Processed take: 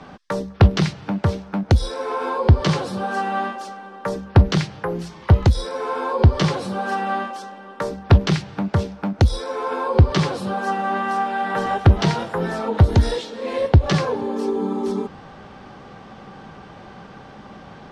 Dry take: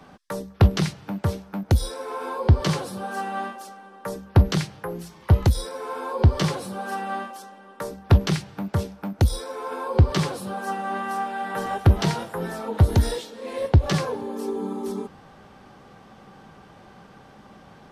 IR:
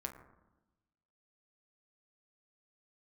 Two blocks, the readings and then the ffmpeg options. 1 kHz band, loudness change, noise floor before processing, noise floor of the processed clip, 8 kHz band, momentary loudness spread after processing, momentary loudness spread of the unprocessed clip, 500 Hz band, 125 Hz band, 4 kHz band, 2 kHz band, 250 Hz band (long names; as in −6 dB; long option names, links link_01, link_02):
+5.5 dB, +4.0 dB, −49 dBFS, −42 dBFS, −1.0 dB, 12 LU, 15 LU, +5.5 dB, +3.5 dB, +3.5 dB, +5.5 dB, +4.5 dB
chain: -filter_complex "[0:a]lowpass=5700,asplit=2[link_01][link_02];[link_02]acompressor=threshold=-29dB:ratio=6,volume=-1dB[link_03];[link_01][link_03]amix=inputs=2:normalize=0,volume=2dB"